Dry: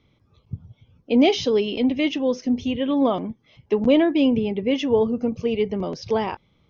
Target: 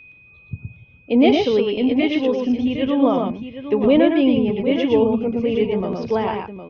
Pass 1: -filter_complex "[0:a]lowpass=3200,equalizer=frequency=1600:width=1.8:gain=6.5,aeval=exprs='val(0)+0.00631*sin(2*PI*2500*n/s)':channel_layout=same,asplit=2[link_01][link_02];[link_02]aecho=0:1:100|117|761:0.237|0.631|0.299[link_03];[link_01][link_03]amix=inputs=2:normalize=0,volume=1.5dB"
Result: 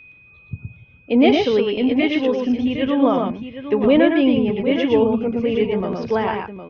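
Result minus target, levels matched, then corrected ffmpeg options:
2,000 Hz band +3.0 dB
-filter_complex "[0:a]lowpass=3200,aeval=exprs='val(0)+0.00631*sin(2*PI*2500*n/s)':channel_layout=same,asplit=2[link_01][link_02];[link_02]aecho=0:1:100|117|761:0.237|0.631|0.299[link_03];[link_01][link_03]amix=inputs=2:normalize=0,volume=1.5dB"

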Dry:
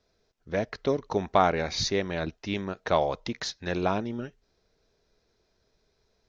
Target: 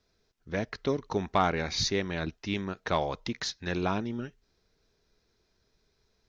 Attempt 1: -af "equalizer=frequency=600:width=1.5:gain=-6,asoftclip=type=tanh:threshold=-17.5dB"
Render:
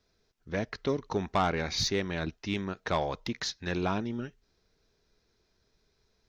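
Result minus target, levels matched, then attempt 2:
soft clipping: distortion +9 dB
-af "equalizer=frequency=600:width=1.5:gain=-6,asoftclip=type=tanh:threshold=-10.5dB"

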